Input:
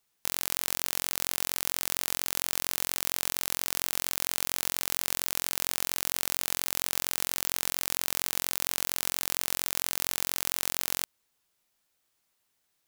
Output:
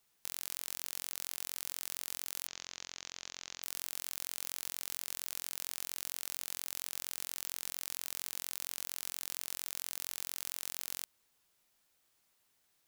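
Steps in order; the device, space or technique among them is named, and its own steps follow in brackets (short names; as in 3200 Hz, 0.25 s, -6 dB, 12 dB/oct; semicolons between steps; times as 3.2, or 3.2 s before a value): saturation between pre-emphasis and de-emphasis (high shelf 5700 Hz +9 dB; soft clip -9 dBFS, distortion -8 dB; high shelf 5700 Hz -9 dB); 2.47–3.63 elliptic low-pass 6700 Hz, stop band 40 dB; gain +1 dB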